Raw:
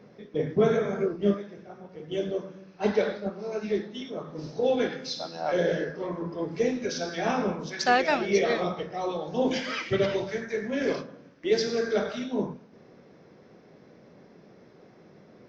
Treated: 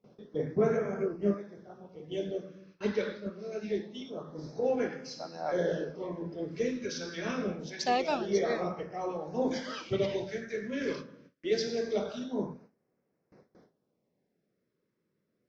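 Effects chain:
auto-filter notch sine 0.25 Hz 720–3,700 Hz
noise gate with hold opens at −42 dBFS
level −4.5 dB

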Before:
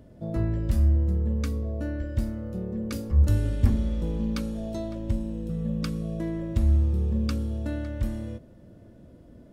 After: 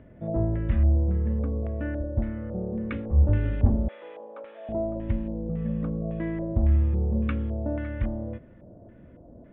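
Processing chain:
0:03.88–0:04.69: high-pass filter 530 Hz 24 dB per octave
auto-filter low-pass square 1.8 Hz 740–2,100 Hz
downsampling to 8,000 Hz

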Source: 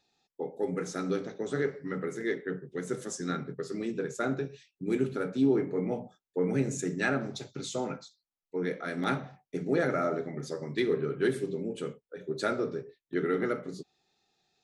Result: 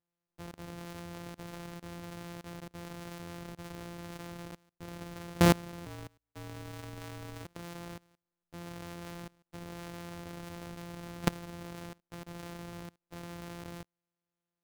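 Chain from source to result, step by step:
samples sorted by size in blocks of 256 samples
0:05.86–0:07.45: frequency shifter −58 Hz
output level in coarse steps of 24 dB
level +4 dB

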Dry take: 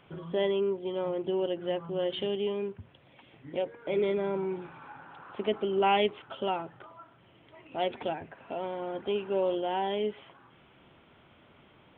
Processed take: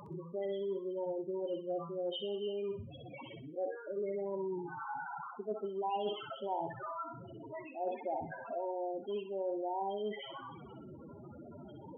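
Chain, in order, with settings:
converter with a step at zero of −36.5 dBFS
in parallel at −9.5 dB: bit reduction 4 bits
on the sum: spectral peaks only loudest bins 8
feedback echo with a high-pass in the loop 63 ms, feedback 41%, high-pass 1,000 Hz, level −4.5 dB
reversed playback
downward compressor 6 to 1, threshold −34 dBFS, peak gain reduction 15 dB
reversed playback
low-shelf EQ 270 Hz −8.5 dB
level +1.5 dB

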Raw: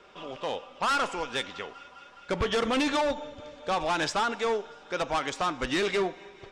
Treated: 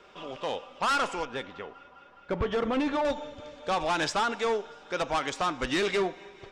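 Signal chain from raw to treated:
0:01.25–0:03.05: low-pass filter 1,200 Hz 6 dB per octave

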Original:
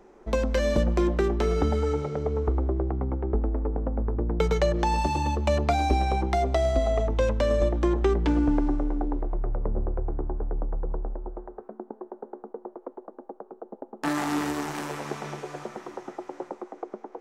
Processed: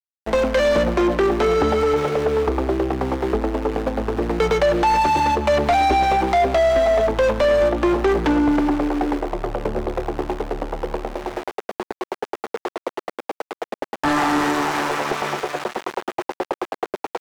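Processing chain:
centre clipping without the shift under −38 dBFS
mid-hump overdrive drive 24 dB, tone 2,400 Hz, clips at −8.5 dBFS

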